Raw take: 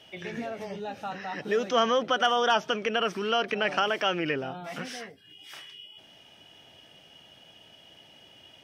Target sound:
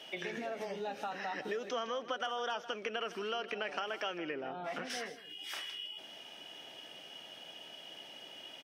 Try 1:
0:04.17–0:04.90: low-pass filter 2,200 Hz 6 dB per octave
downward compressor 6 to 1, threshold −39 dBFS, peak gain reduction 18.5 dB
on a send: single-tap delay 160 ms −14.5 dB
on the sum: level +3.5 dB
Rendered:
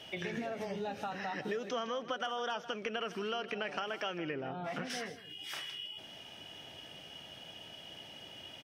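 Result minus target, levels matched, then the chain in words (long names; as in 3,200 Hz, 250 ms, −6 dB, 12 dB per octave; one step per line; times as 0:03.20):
250 Hz band +3.5 dB
0:04.17–0:04.90: low-pass filter 2,200 Hz 6 dB per octave
downward compressor 6 to 1, threshold −39 dBFS, peak gain reduction 18.5 dB
high-pass filter 270 Hz 12 dB per octave
on a send: single-tap delay 160 ms −14.5 dB
on the sum: level +3.5 dB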